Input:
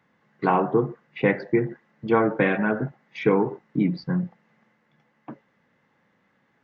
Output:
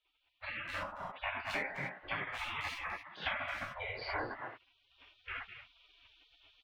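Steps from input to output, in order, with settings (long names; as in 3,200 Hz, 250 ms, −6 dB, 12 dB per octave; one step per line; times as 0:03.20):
low-pass filter 3,300 Hz 24 dB per octave
far-end echo of a speakerphone 210 ms, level −7 dB
reverb whose tail is shaped and stops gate 120 ms flat, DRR −7 dB
automatic gain control gain up to 15 dB
0:00.83–0:01.50: tilt shelving filter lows +4.5 dB, about 760 Hz
downward compressor 6 to 1, threshold −16 dBFS, peak gain reduction 11 dB
gate on every frequency bin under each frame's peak −25 dB weak
level +1 dB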